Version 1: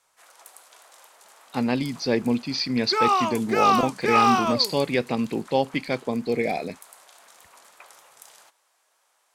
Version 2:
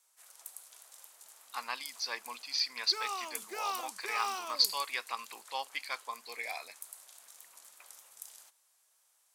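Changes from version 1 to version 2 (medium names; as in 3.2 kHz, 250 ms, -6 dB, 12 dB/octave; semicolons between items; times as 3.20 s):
speech: add resonant high-pass 1.1 kHz, resonance Q 5.3; second sound -5.5 dB; master: add pre-emphasis filter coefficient 0.8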